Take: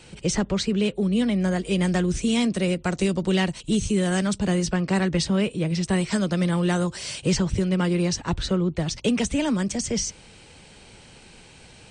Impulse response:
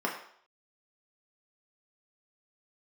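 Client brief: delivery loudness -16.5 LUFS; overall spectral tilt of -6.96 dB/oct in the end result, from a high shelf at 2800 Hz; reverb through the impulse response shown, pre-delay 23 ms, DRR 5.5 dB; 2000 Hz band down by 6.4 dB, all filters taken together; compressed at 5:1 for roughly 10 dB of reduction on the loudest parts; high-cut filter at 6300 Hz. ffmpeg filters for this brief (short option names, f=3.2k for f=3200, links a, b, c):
-filter_complex "[0:a]lowpass=6.3k,equalizer=f=2k:t=o:g=-5,highshelf=f=2.8k:g=-7.5,acompressor=threshold=-30dB:ratio=5,asplit=2[a][b];[1:a]atrim=start_sample=2205,adelay=23[c];[b][c]afir=irnorm=-1:irlink=0,volume=-14.5dB[d];[a][d]amix=inputs=2:normalize=0,volume=16dB"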